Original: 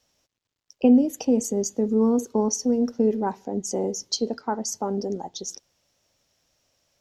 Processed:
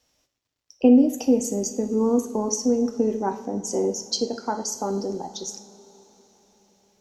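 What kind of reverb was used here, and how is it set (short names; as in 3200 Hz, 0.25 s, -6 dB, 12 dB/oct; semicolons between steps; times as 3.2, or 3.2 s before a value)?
two-slope reverb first 0.52 s, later 4.9 s, from -20 dB, DRR 6 dB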